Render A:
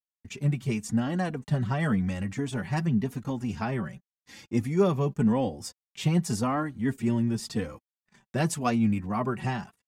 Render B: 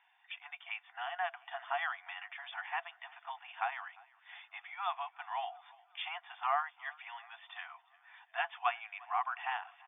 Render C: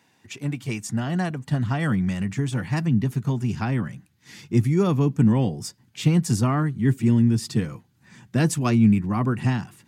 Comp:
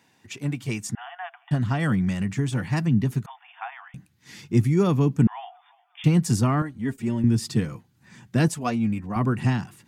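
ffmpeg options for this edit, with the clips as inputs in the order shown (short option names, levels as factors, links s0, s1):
-filter_complex "[1:a]asplit=3[s0][s1][s2];[0:a]asplit=2[s3][s4];[2:a]asplit=6[s5][s6][s7][s8][s9][s10];[s5]atrim=end=0.952[s11];[s0]atrim=start=0.948:end=1.512[s12];[s6]atrim=start=1.508:end=3.262[s13];[s1]atrim=start=3.258:end=3.942[s14];[s7]atrim=start=3.938:end=5.272[s15];[s2]atrim=start=5.268:end=6.042[s16];[s8]atrim=start=6.038:end=6.622[s17];[s3]atrim=start=6.618:end=7.242[s18];[s9]atrim=start=7.238:end=8.482[s19];[s4]atrim=start=8.478:end=9.162[s20];[s10]atrim=start=9.158[s21];[s11][s12]acrossfade=d=0.004:c1=hsin:c2=hsin[s22];[s22][s13]acrossfade=d=0.004:c1=hsin:c2=hsin[s23];[s23][s14]acrossfade=d=0.004:c1=hsin:c2=hsin[s24];[s24][s15]acrossfade=d=0.004:c1=hsin:c2=hsin[s25];[s25][s16]acrossfade=d=0.004:c1=hsin:c2=hsin[s26];[s26][s17]acrossfade=d=0.004:c1=hsin:c2=hsin[s27];[s27][s18]acrossfade=d=0.004:c1=hsin:c2=hsin[s28];[s28][s19]acrossfade=d=0.004:c1=hsin:c2=hsin[s29];[s29][s20]acrossfade=d=0.004:c1=hsin:c2=hsin[s30];[s30][s21]acrossfade=d=0.004:c1=hsin:c2=hsin"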